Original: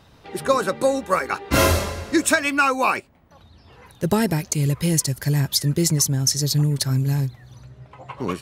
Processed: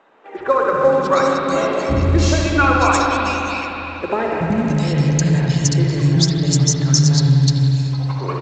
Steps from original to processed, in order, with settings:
0:01.26–0:02.54: parametric band 1,400 Hz −13.5 dB 1.3 octaves
three-band delay without the direct sound mids, lows, highs 380/670 ms, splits 310/2,500 Hz
convolution reverb RT60 3.7 s, pre-delay 59 ms, DRR −1.5 dB
level +3 dB
mu-law 128 kbit/s 16,000 Hz

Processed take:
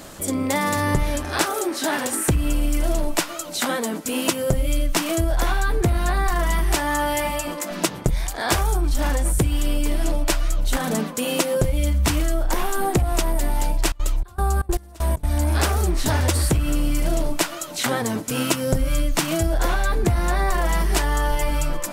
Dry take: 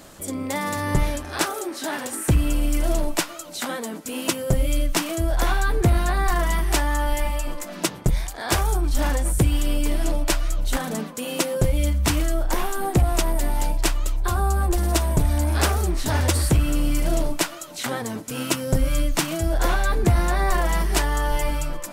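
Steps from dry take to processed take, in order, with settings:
0:06.75–0:07.71: high-pass filter 100 Hz 12 dB per octave
downward compressor, threshold −22 dBFS, peak gain reduction 8.5 dB
0:13.88–0:15.38: gate pattern "..xx.xxx..xxx.x." 194 BPM −24 dB
level +5.5 dB

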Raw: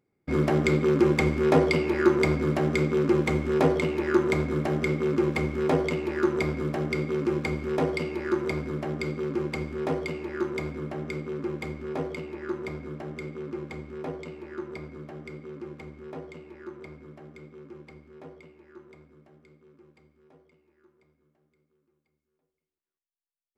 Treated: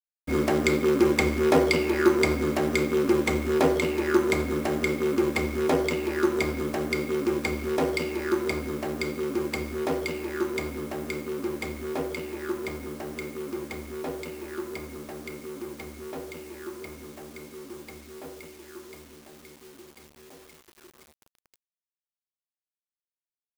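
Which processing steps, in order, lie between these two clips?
mu-law and A-law mismatch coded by mu
parametric band 150 Hz −10.5 dB 0.22 octaves
bit reduction 9 bits
high-shelf EQ 4,400 Hz +9 dB

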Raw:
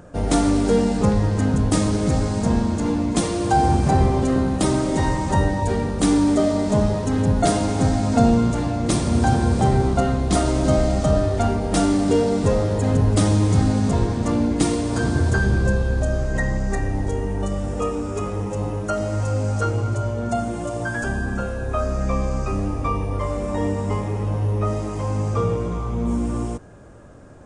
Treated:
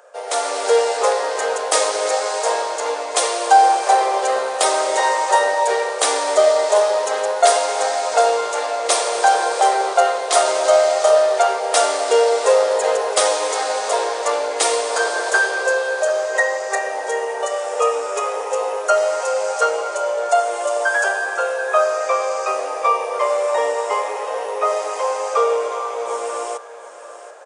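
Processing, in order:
Butterworth high-pass 470 Hz 48 dB per octave
on a send: single-tap delay 734 ms −14 dB
on the sum: automatic gain control gain up to 9 dB
level +1 dB

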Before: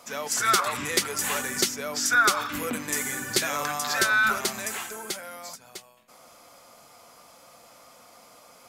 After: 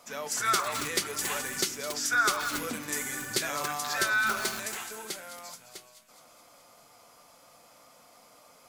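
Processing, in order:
on a send: delay with a high-pass on its return 211 ms, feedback 64%, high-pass 2,700 Hz, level −11.5 dB
on the sum: rectangular room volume 200 cubic metres, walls furnished, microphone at 0.39 metres
feedback echo at a low word length 278 ms, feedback 35%, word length 4 bits, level −6.5 dB
level −5 dB

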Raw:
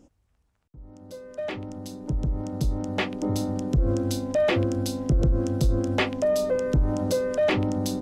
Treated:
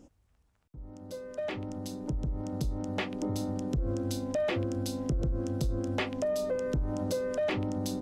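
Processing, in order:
downward compressor 2 to 1, threshold −34 dBFS, peak gain reduction 9.5 dB

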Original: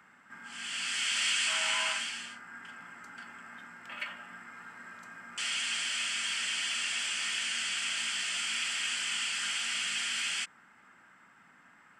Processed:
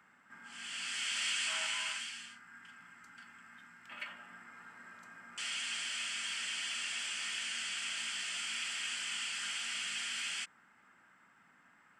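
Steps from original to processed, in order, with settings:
0:01.66–0:03.91: parametric band 540 Hz −9.5 dB 1.8 octaves
level −5.5 dB

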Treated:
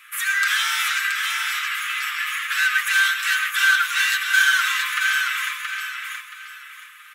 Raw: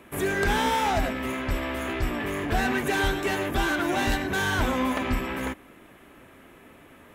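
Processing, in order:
Butterworth high-pass 1,200 Hz 72 dB per octave
comb filter 6.5 ms
on a send: repeating echo 675 ms, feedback 29%, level −5 dB
on the sum: level +8 dB

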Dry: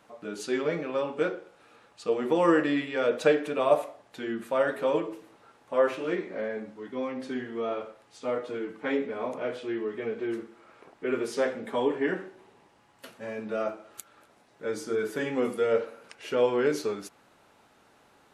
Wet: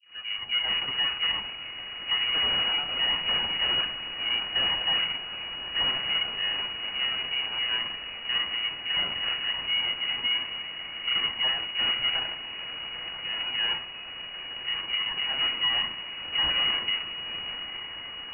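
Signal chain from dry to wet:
every frequency bin delayed by itself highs late, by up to 566 ms
in parallel at 0 dB: downward compressor 6 to 1, threshold −39 dBFS, peak gain reduction 20 dB
on the sum: wrap-around overflow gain 22 dB
feedback delay with all-pass diffusion 905 ms, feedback 69%, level −10.5 dB
full-wave rectification
on a send: echo through a band-pass that steps 379 ms, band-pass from 290 Hz, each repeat 0.7 octaves, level −6.5 dB
on the sum: voice inversion scrambler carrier 2,900 Hz

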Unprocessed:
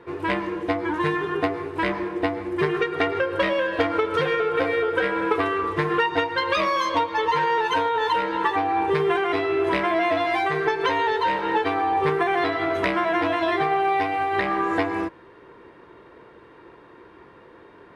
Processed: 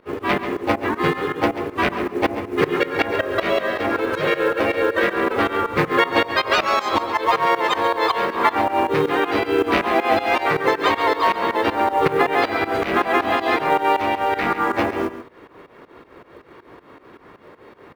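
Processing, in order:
pitch-shifted copies added −5 semitones −6 dB, +3 semitones −2 dB
hum removal 60.79 Hz, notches 12
fake sidechain pumping 159 BPM, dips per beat 2, −20 dB, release 159 ms
floating-point word with a short mantissa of 4 bits
on a send: single-tap delay 138 ms −12.5 dB
on the sum: level +2.5 dB

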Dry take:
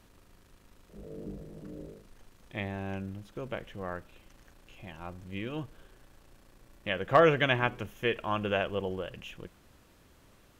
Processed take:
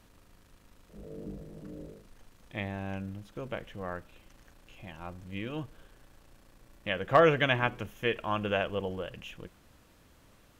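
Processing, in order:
notch filter 380 Hz, Q 12

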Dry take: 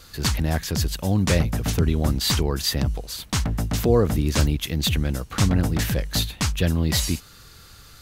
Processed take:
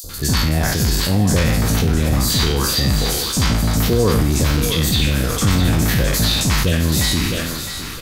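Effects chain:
peak hold with a decay on every bin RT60 0.61 s
notch filter 2,800 Hz, Q 26
three-band delay without the direct sound highs, lows, mids 40/90 ms, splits 700/5,400 Hz
in parallel at −1.5 dB: upward compression, threshold −21 dBFS
on the sum: brickwall limiter −7.5 dBFS, peak gain reduction 7 dB
on a send: feedback echo with a high-pass in the loop 660 ms, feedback 56%, high-pass 330 Hz, level −9 dB
on the sum: level that may fall only so fast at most 21 dB per second

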